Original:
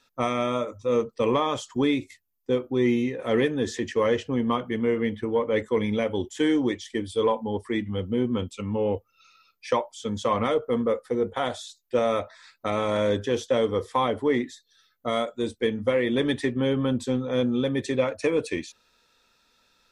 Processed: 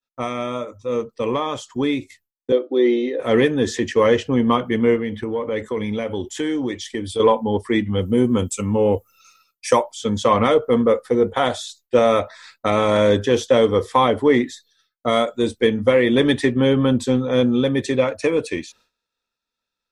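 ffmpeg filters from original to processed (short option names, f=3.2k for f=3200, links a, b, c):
-filter_complex "[0:a]asettb=1/sr,asplit=3[a][b][c];[a]atrim=end=2.524[d];[b]atrim=start=2.52:end=3.2,asetpts=PTS-STARTPTS,afade=t=in:d=0.004:c=qsin,afade=t=out:st=0.676:d=0.004:c=qsin,highpass=f=300:w=0.5412,highpass=f=300:w=1.3066,equalizer=f=310:t=q:w=4:g=8,equalizer=f=570:t=q:w=4:g=8,equalizer=f=970:t=q:w=4:g=-8,equalizer=f=1.5k:t=q:w=4:g=-4,equalizer=f=2.5k:t=q:w=4:g=-9,equalizer=f=3.8k:t=q:w=4:g=6,lowpass=f=4.6k:w=0.5412,lowpass=f=4.6k:w=1.3066[e];[c]atrim=start=3.196[f];[d][e]acrossfade=d=0.004:c1=hsin:c2=qsin[g];[g][f]acrossfade=d=0.004:c1=qsin:c2=hsin,asettb=1/sr,asplit=3[h][i][j];[h]atrim=end=4.964[k];[i]atrim=start=4.96:end=7.2,asetpts=PTS-STARTPTS,afade=t=in:d=0.004:c=qsin,afade=t=out:st=2.236:d=0.004:c=qsin,acompressor=threshold=-31dB:ratio=2.5:attack=3.2:release=140:knee=1:detection=peak[l];[j]atrim=start=7.196[m];[k][l]acrossfade=d=0.004:c1=hsin:c2=qsin[n];[n][m]acrossfade=d=0.004:c1=qsin:c2=hsin,asettb=1/sr,asplit=3[o][p][q];[o]atrim=end=8.014[r];[p]atrim=start=8.01:end=9.83,asetpts=PTS-STARTPTS,afade=t=in:d=0.004:c=qsin,afade=t=out:st=1.816:d=0.004:c=qsin,highshelf=f=5.7k:t=q:w=1.5:g=12[s];[q]atrim=start=9.826[t];[r][s]acrossfade=d=0.004:c1=hsin:c2=qsin[u];[u][t]acrossfade=d=0.004:c1=qsin:c2=hsin,agate=range=-33dB:threshold=-52dB:ratio=3:detection=peak,dynaudnorm=f=580:g=9:m=9dB"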